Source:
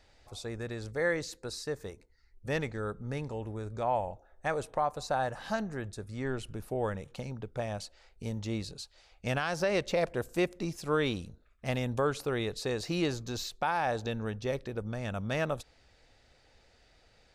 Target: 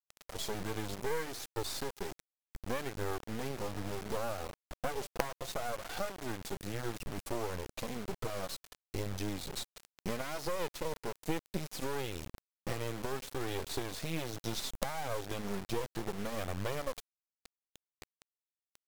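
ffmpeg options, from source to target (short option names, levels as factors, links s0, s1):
-af "equalizer=f=610:t=o:w=0.59:g=5.5,acompressor=threshold=0.0112:ratio=10,flanger=delay=1.7:depth=4.4:regen=-2:speed=0.72:shape=triangular,acrusher=bits=6:dc=4:mix=0:aa=0.000001,asetrate=40517,aresample=44100,volume=3.98"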